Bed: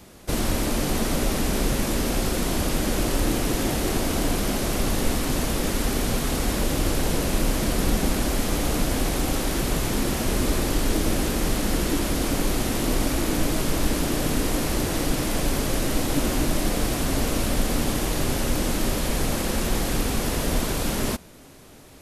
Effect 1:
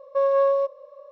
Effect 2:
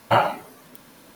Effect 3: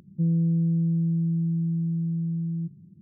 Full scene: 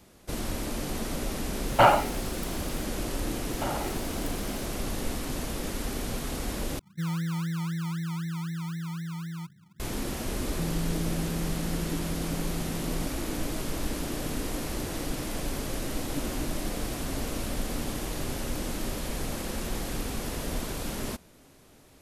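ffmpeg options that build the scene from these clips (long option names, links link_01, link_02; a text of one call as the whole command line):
ffmpeg -i bed.wav -i cue0.wav -i cue1.wav -i cue2.wav -filter_complex "[2:a]asplit=2[link_01][link_02];[3:a]asplit=2[link_03][link_04];[0:a]volume=-8.5dB[link_05];[link_01]acontrast=85[link_06];[link_02]acompressor=threshold=-30dB:ratio=6:attack=3.2:release=140:knee=1:detection=peak[link_07];[link_03]acrusher=samples=32:mix=1:aa=0.000001:lfo=1:lforange=19.2:lforate=3.9[link_08];[link_05]asplit=2[link_09][link_10];[link_09]atrim=end=6.794[link_11];[link_08]atrim=end=3.01,asetpts=PTS-STARTPTS,volume=-7.5dB[link_12];[link_10]atrim=start=9.796[link_13];[link_06]atrim=end=1.15,asetpts=PTS-STARTPTS,volume=-5.5dB,afade=type=in:duration=0.004:curve=hsin,afade=type=out:start_time=1.146:duration=0.004:curve=hsin,adelay=1680[link_14];[link_07]atrim=end=1.15,asetpts=PTS-STARTPTS,volume=-0.5dB,afade=type=in:duration=0.004:curve=hsin,afade=type=out:start_time=1.146:duration=0.004:curve=hsin,adelay=3510[link_15];[link_04]atrim=end=3.01,asetpts=PTS-STARTPTS,volume=-10.5dB,afade=type=in:duration=0.004:curve=hsin,afade=type=out:start_time=3.006:duration=0.004:curve=hsin,adelay=10390[link_16];[link_11][link_12]acrossfade=duration=0.004:curve1=hsin:curve2=hsin[link_17];[link_17][link_13]acrossfade=duration=0.004:curve1=hsin:curve2=hsin[link_18];[link_18][link_14][link_15][link_16]amix=inputs=4:normalize=0" out.wav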